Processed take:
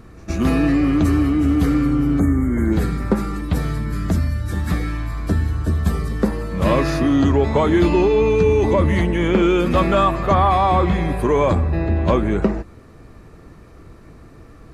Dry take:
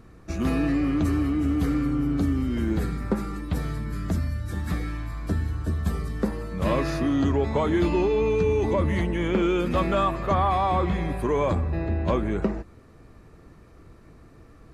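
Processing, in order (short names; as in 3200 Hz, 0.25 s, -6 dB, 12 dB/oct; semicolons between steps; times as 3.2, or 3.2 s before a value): spectral gain 2.19–2.72, 2300–6300 Hz -23 dB; reverse echo 0.116 s -22 dB; gain +7 dB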